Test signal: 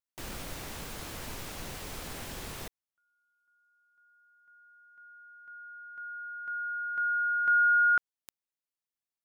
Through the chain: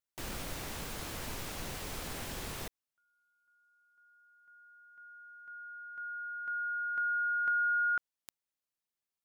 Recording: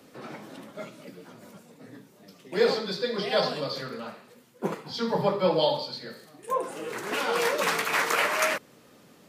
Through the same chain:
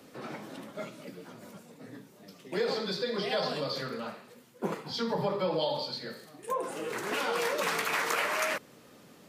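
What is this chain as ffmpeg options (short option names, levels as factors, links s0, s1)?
-af "acompressor=threshold=0.02:ratio=3:attack=48:release=51:knee=6:detection=peak"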